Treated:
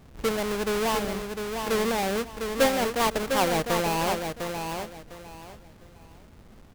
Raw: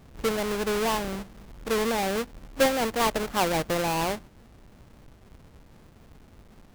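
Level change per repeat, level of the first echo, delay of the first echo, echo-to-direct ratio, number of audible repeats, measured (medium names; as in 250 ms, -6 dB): -12.0 dB, -6.0 dB, 703 ms, -5.5 dB, 3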